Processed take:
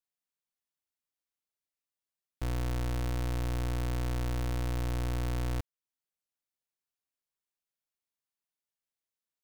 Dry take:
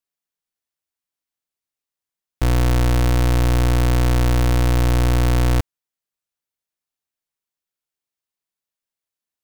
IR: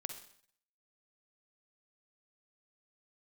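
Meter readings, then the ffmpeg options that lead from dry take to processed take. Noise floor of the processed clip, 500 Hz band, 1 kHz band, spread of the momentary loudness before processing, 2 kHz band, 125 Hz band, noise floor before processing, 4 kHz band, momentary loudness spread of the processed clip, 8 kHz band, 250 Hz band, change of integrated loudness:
under -85 dBFS, -15.5 dB, -15.5 dB, 3 LU, -15.5 dB, -15.5 dB, under -85 dBFS, -15.5 dB, 3 LU, -15.5 dB, -15.5 dB, -15.5 dB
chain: -af "alimiter=level_in=0.5dB:limit=-24dB:level=0:latency=1:release=331,volume=-0.5dB,volume=-6.5dB"

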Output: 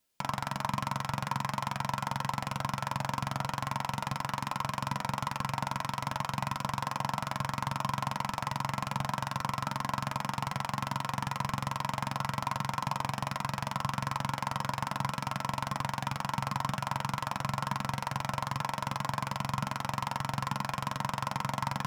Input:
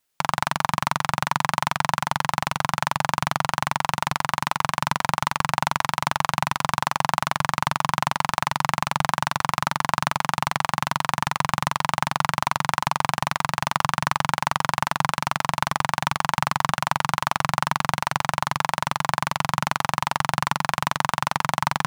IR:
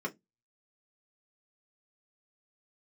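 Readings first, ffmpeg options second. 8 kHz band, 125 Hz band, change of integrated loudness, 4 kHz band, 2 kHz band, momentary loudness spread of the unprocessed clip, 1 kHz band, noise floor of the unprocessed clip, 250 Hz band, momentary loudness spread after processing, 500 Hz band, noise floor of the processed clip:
-11.5 dB, -4.5 dB, -10.0 dB, -11.0 dB, -13.0 dB, 1 LU, -10.0 dB, -62 dBFS, -5.5 dB, 1 LU, -9.0 dB, -46 dBFS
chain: -filter_complex "[0:a]alimiter=limit=-11.5dB:level=0:latency=1:release=11,asplit=2[a][b];[1:a]atrim=start_sample=2205[c];[b][c]afir=irnorm=-1:irlink=0,volume=-8.5dB[d];[a][d]amix=inputs=2:normalize=0,volume=-1.5dB"

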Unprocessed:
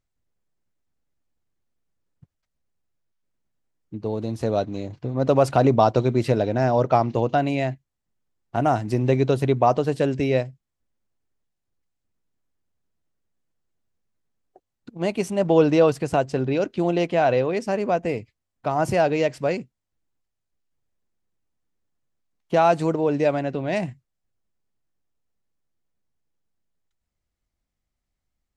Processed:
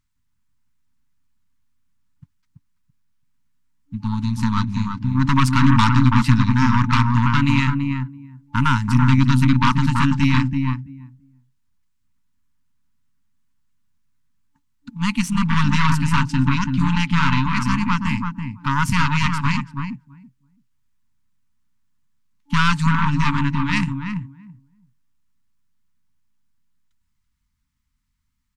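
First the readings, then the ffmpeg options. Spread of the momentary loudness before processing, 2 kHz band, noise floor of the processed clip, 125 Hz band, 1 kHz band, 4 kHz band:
11 LU, +10.0 dB, -70 dBFS, +9.0 dB, +2.0 dB, +10.5 dB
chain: -filter_complex "[0:a]asplit=2[a][b];[b]adelay=333,lowpass=f=940:p=1,volume=-3dB,asplit=2[c][d];[d]adelay=333,lowpass=f=940:p=1,volume=0.17,asplit=2[e][f];[f]adelay=333,lowpass=f=940:p=1,volume=0.17[g];[a][c][e][g]amix=inputs=4:normalize=0,aeval=exprs='0.668*(cos(1*acos(clip(val(0)/0.668,-1,1)))-cos(1*PI/2))+0.0668*(cos(8*acos(clip(val(0)/0.668,-1,1)))-cos(8*PI/2))':c=same,afftfilt=real='re*(1-between(b*sr/4096,290,870))':imag='im*(1-between(b*sr/4096,290,870))':win_size=4096:overlap=0.75,volume=6dB"

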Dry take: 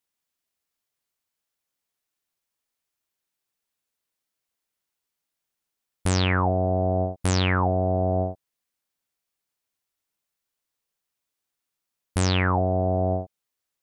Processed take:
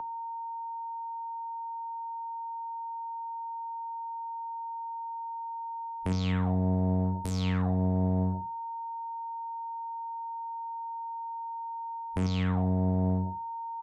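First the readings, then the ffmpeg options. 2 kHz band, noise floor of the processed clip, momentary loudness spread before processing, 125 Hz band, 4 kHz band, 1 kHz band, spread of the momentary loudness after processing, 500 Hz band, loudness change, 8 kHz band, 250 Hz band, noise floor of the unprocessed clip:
-14.0 dB, -37 dBFS, 9 LU, -3.5 dB, -12.0 dB, 0.0 dB, 10 LU, -11.0 dB, -9.0 dB, -15.5 dB, -0.5 dB, -84 dBFS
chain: -filter_complex "[0:a]asplit=2[a][b];[b]adelay=64,lowpass=f=4.1k:p=1,volume=-5.5dB,asplit=2[c][d];[d]adelay=64,lowpass=f=4.1k:p=1,volume=0.22,asplit=2[e][f];[f]adelay=64,lowpass=f=4.1k:p=1,volume=0.22[g];[a][c][e][g]amix=inputs=4:normalize=0,afwtdn=0.0158,asplit=2[h][i];[i]adelay=37,volume=-12.5dB[j];[h][j]amix=inputs=2:normalize=0,aeval=exprs='val(0)+0.0282*sin(2*PI*920*n/s)':c=same,acrossover=split=310|3000[k][l][m];[l]acompressor=threshold=-42dB:ratio=2.5[n];[k][n][m]amix=inputs=3:normalize=0,acrossover=split=120[o][p];[o]asoftclip=type=hard:threshold=-37dB[q];[p]alimiter=limit=-23.5dB:level=0:latency=1:release=230[r];[q][r]amix=inputs=2:normalize=0,bandreject=f=50:t=h:w=6,bandreject=f=100:t=h:w=6,bandreject=f=150:t=h:w=6,bandreject=f=200:t=h:w=6,bandreject=f=250:t=h:w=6,bandreject=f=300:t=h:w=6,bandreject=f=350:t=h:w=6,areverse,acompressor=mode=upward:threshold=-36dB:ratio=2.5,areverse,tiltshelf=f=1.4k:g=3"

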